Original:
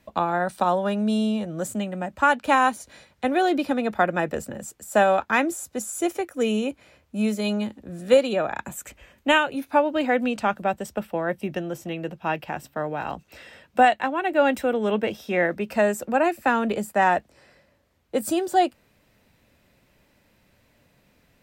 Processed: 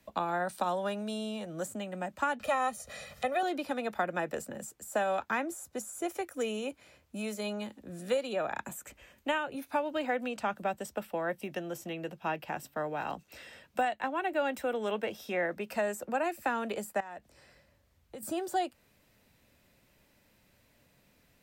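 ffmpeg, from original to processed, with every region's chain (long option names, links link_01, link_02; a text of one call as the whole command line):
ffmpeg -i in.wav -filter_complex "[0:a]asettb=1/sr,asplit=3[link_01][link_02][link_03];[link_01]atrim=end=2.404[link_04];[link_02]atrim=start=2.4:end=3.43,asetpts=PTS-STARTPTS,afade=type=in:duration=0.004:curve=qsin,afade=type=out:start_time=1.026:duration=0.004:curve=qsin,aecho=1:1:1.6:0.86,atrim=end_sample=45423,acompressor=mode=upward:threshold=-29dB:ratio=2.5:attack=3.2:release=140:knee=2.83:detection=peak[link_05];[link_03]atrim=start=3.426[link_06];[link_04][link_05]acrossfade=duration=0.004:curve1=hsin:curve2=qsin[link_07];[link_07][link_06]acrossfade=duration=0.004:curve1=qsin:curve2=hsin,asettb=1/sr,asplit=3[link_08][link_09][link_10];[link_08]atrim=end=17.004[link_11];[link_09]atrim=start=17:end=18.23,asetpts=PTS-STARTPTS,afade=type=in:duration=0.004:curve=qsin,afade=type=out:start_time=1.226:duration=0.004:curve=qsin,acompressor=threshold=-35dB:ratio=6:attack=3.2:release=140:knee=1:detection=peak,asubboost=boost=6.5:cutoff=160[link_12];[link_10]atrim=start=18.226[link_13];[link_11][link_12]acrossfade=duration=0.004:curve1=hsin:curve2=qsin[link_14];[link_14][link_13]acrossfade=duration=0.004:curve1=qsin:curve2=hsin,highshelf=frequency=4600:gain=6,acrossover=split=140|450|1900[link_15][link_16][link_17][link_18];[link_15]acompressor=threshold=-55dB:ratio=4[link_19];[link_16]acompressor=threshold=-35dB:ratio=4[link_20];[link_17]acompressor=threshold=-24dB:ratio=4[link_21];[link_18]acompressor=threshold=-38dB:ratio=4[link_22];[link_19][link_20][link_21][link_22]amix=inputs=4:normalize=0,volume=-5.5dB" out.wav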